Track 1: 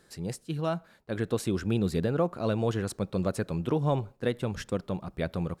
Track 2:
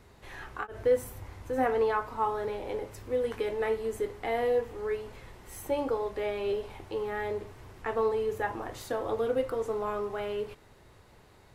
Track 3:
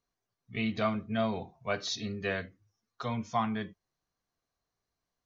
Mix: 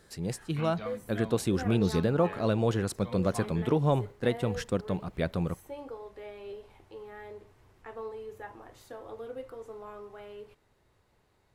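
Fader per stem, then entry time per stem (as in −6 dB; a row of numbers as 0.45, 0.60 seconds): +1.0, −12.0, −11.0 decibels; 0.00, 0.00, 0.00 seconds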